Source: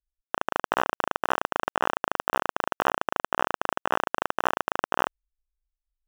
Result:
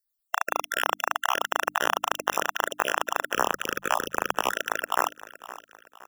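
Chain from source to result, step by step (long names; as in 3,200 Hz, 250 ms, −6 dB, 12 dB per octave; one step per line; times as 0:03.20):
time-frequency cells dropped at random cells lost 39%
RIAA equalisation recording
mains-hum notches 50/100/150/200/250/300 Hz
0:01.66–0:02.46: low-shelf EQ 200 Hz +9 dB
0:03.33–0:04.53: frequency shifter −110 Hz
repeating echo 516 ms, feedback 41%, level −16.5 dB
level +2.5 dB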